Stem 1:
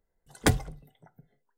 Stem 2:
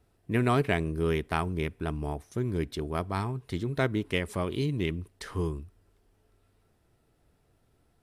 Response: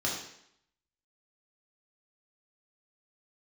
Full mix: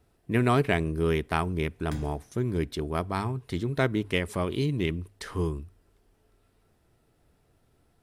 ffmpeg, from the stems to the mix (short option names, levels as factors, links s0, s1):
-filter_complex "[0:a]adelay=1450,volume=0.112,asplit=2[s0][s1];[s1]volume=0.355[s2];[1:a]bandreject=f=50:t=h:w=6,bandreject=f=100:t=h:w=6,volume=1.26,asplit=2[s3][s4];[s4]apad=whole_len=133475[s5];[s0][s5]sidechaincompress=threshold=0.0398:ratio=8:attack=16:release=390[s6];[2:a]atrim=start_sample=2205[s7];[s2][s7]afir=irnorm=-1:irlink=0[s8];[s6][s3][s8]amix=inputs=3:normalize=0"